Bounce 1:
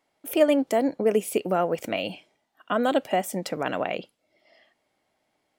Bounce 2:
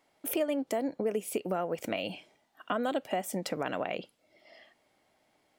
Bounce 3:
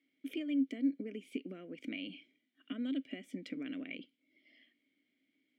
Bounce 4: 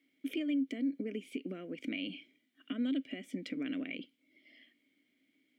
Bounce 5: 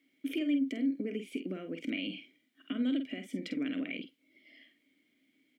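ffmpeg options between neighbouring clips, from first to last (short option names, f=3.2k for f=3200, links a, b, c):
-af "acompressor=threshold=-35dB:ratio=3,volume=3dB"
-filter_complex "[0:a]asplit=3[a][b][c];[a]bandpass=f=270:t=q:w=8,volume=0dB[d];[b]bandpass=f=2.29k:t=q:w=8,volume=-6dB[e];[c]bandpass=f=3.01k:t=q:w=8,volume=-9dB[f];[d][e][f]amix=inputs=3:normalize=0,volume=4dB"
-af "alimiter=level_in=7dB:limit=-24dB:level=0:latency=1:release=89,volume=-7dB,volume=4.5dB"
-filter_complex "[0:a]asplit=2[a][b];[b]adelay=48,volume=-8.5dB[c];[a][c]amix=inputs=2:normalize=0,volume=2dB"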